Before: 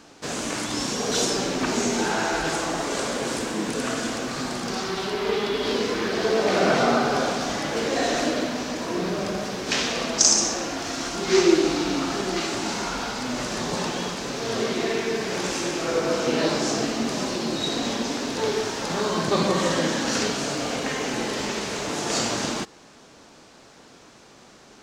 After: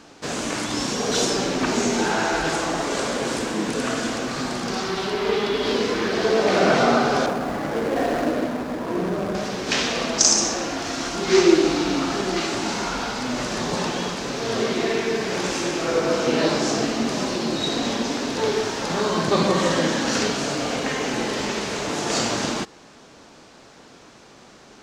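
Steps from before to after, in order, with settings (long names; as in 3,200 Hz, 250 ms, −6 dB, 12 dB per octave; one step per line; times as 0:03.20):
0:07.26–0:09.35: running median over 15 samples
high-shelf EQ 8,000 Hz −5.5 dB
level +2.5 dB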